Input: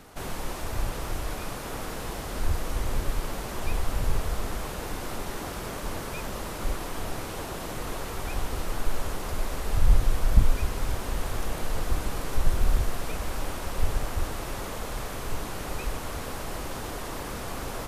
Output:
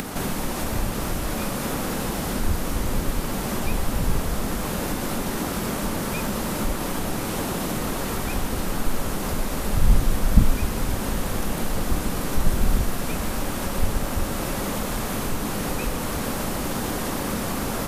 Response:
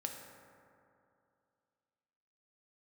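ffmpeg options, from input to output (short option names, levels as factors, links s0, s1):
-filter_complex "[0:a]equalizer=f=210:t=o:w=1.2:g=11,acompressor=mode=upward:threshold=0.0708:ratio=2.5,asplit=2[s0][s1];[1:a]atrim=start_sample=2205,lowshelf=f=400:g=-11.5,highshelf=f=7900:g=11[s2];[s1][s2]afir=irnorm=-1:irlink=0,volume=0.841[s3];[s0][s3]amix=inputs=2:normalize=0"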